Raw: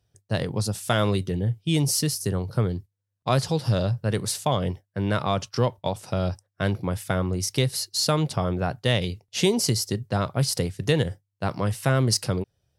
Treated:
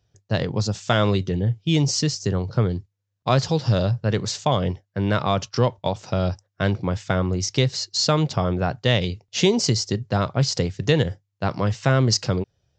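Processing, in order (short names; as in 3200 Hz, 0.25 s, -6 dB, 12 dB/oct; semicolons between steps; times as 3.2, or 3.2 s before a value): downsampling 16000 Hz; gain +3 dB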